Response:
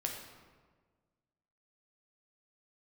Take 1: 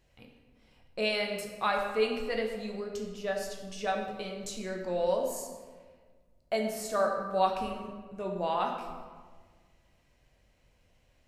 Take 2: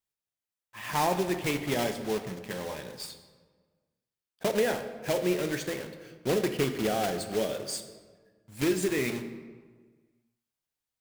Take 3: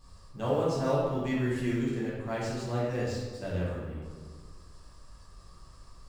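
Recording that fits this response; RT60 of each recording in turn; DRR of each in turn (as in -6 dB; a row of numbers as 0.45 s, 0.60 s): 1; 1.5 s, 1.5 s, 1.5 s; 0.5 dB, 7.0 dB, -8.5 dB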